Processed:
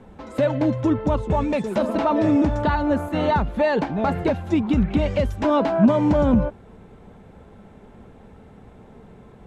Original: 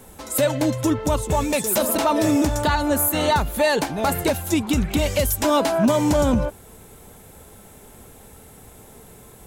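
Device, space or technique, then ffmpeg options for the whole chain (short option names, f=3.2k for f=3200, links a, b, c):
phone in a pocket: -af "lowpass=3.3k,equalizer=f=200:t=o:w=0.55:g=5.5,highshelf=f=2.2k:g=-8.5"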